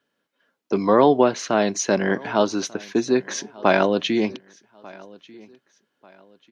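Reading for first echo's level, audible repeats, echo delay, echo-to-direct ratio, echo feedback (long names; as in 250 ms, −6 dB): −23.5 dB, 2, 1,192 ms, −23.0 dB, 34%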